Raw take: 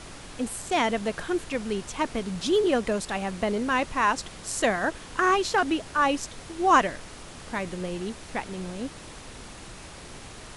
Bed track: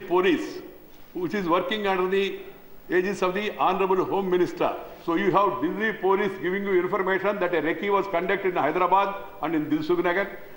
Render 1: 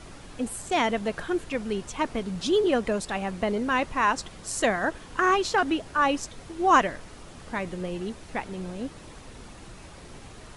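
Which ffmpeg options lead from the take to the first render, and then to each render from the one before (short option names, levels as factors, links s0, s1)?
-af "afftdn=nr=6:nf=-44"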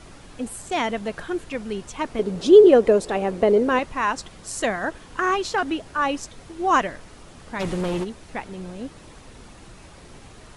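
-filter_complex "[0:a]asettb=1/sr,asplit=3[s0][s1][s2];[s0]atrim=end=2.194[s3];[s1]atrim=start=2.19:end=3.79,asetpts=PTS-STARTPTS,afade=t=in:d=0.004:c=qsin,afade=t=out:st=1.596:d=0.004:c=qsin,equalizer=f=440:w=1.1:g=13.5[s4];[s2]atrim=start=3.786[s5];[s3][s4]acrossfade=d=0.004:c1=hsin:c2=qsin[s6];[s6][s5]acrossfade=d=0.004:c1=qsin:c2=hsin,asplit=3[s7][s8][s9];[s7]afade=t=out:st=7.59:d=0.02[s10];[s8]aeval=exprs='0.0841*sin(PI/2*2.24*val(0)/0.0841)':c=same,afade=t=in:st=7.59:d=0.02,afade=t=out:st=8.03:d=0.02[s11];[s9]afade=t=in:st=8.03:d=0.02[s12];[s10][s11][s12]amix=inputs=3:normalize=0"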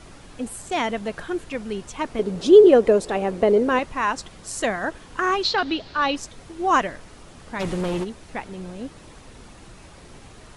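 -filter_complex "[0:a]asettb=1/sr,asplit=3[s0][s1][s2];[s0]atrim=end=5.434[s3];[s1]atrim=start=5.43:end=6.16,asetpts=PTS-STARTPTS,afade=t=in:d=0.004:c=qsin,afade=t=out:st=0.726:d=0.004:c=qsin,lowpass=f=4200:t=q:w=4.4[s4];[s2]atrim=start=6.156[s5];[s3][s4]acrossfade=d=0.004:c1=hsin:c2=qsin[s6];[s6][s5]acrossfade=d=0.004:c1=qsin:c2=hsin"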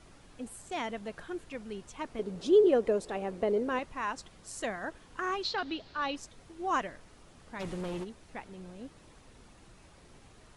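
-af "volume=0.266"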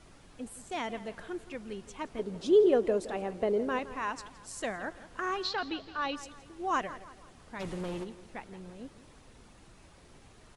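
-filter_complex "[0:a]asplit=2[s0][s1];[s1]adelay=167,lowpass=f=4900:p=1,volume=0.178,asplit=2[s2][s3];[s3]adelay=167,lowpass=f=4900:p=1,volume=0.44,asplit=2[s4][s5];[s5]adelay=167,lowpass=f=4900:p=1,volume=0.44,asplit=2[s6][s7];[s7]adelay=167,lowpass=f=4900:p=1,volume=0.44[s8];[s0][s2][s4][s6][s8]amix=inputs=5:normalize=0"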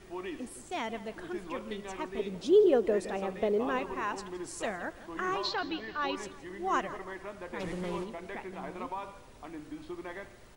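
-filter_complex "[1:a]volume=0.119[s0];[0:a][s0]amix=inputs=2:normalize=0"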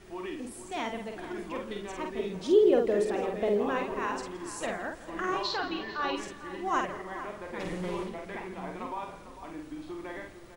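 -filter_complex "[0:a]asplit=2[s0][s1];[s1]adelay=49,volume=0.631[s2];[s0][s2]amix=inputs=2:normalize=0,asplit=2[s3][s4];[s4]adelay=449,volume=0.251,highshelf=f=4000:g=-10.1[s5];[s3][s5]amix=inputs=2:normalize=0"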